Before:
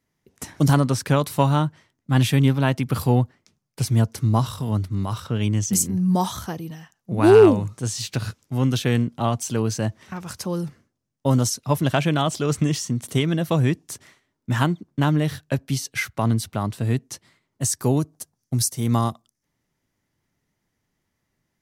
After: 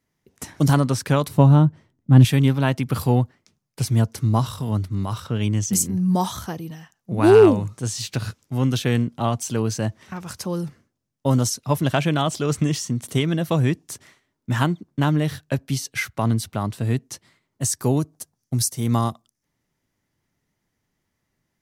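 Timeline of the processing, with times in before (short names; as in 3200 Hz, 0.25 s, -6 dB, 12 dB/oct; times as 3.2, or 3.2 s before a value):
1.28–2.25 tilt shelf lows +8 dB, about 690 Hz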